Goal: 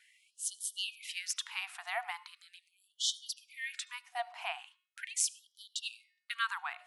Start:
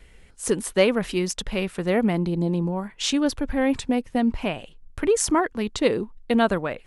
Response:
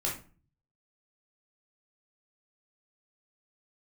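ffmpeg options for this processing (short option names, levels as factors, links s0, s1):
-filter_complex "[0:a]bandreject=f=363.4:t=h:w=4,bandreject=f=726.8:t=h:w=4,bandreject=f=1090.2:t=h:w=4,bandreject=f=1453.6:t=h:w=4,bandreject=f=1817:t=h:w=4,bandreject=f=2180.4:t=h:w=4,bandreject=f=2543.8:t=h:w=4,bandreject=f=2907.2:t=h:w=4,bandreject=f=3270.6:t=h:w=4,bandreject=f=3634:t=h:w=4,bandreject=f=3997.4:t=h:w=4,bandreject=f=4360.8:t=h:w=4,bandreject=f=4724.2:t=h:w=4,bandreject=f=5087.6:t=h:w=4,bandreject=f=5451:t=h:w=4,bandreject=f=5814.4:t=h:w=4,asplit=2[s0][s1];[1:a]atrim=start_sample=2205,adelay=73[s2];[s1][s2]afir=irnorm=-1:irlink=0,volume=0.0398[s3];[s0][s3]amix=inputs=2:normalize=0,afftfilt=real='re*gte(b*sr/1024,640*pow(3000/640,0.5+0.5*sin(2*PI*0.4*pts/sr)))':imag='im*gte(b*sr/1024,640*pow(3000/640,0.5+0.5*sin(2*PI*0.4*pts/sr)))':win_size=1024:overlap=0.75,volume=0.531"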